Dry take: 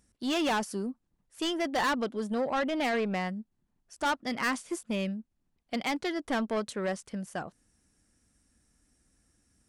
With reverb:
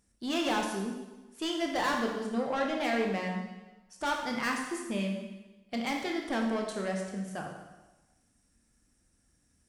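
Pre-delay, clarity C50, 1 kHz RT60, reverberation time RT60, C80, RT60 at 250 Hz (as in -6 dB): 8 ms, 4.0 dB, 1.1 s, 1.1 s, 6.0 dB, 1.1 s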